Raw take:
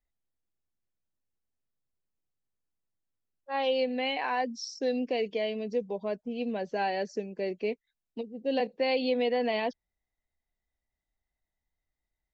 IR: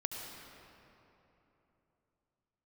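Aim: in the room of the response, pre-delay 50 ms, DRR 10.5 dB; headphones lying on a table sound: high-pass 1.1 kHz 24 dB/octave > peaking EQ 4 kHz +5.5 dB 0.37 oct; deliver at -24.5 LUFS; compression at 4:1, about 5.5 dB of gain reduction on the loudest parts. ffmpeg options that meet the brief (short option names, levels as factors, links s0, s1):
-filter_complex "[0:a]acompressor=threshold=0.0316:ratio=4,asplit=2[s0][s1];[1:a]atrim=start_sample=2205,adelay=50[s2];[s1][s2]afir=irnorm=-1:irlink=0,volume=0.251[s3];[s0][s3]amix=inputs=2:normalize=0,highpass=f=1100:w=0.5412,highpass=f=1100:w=1.3066,equalizer=f=4000:t=o:w=0.37:g=5.5,volume=6.68"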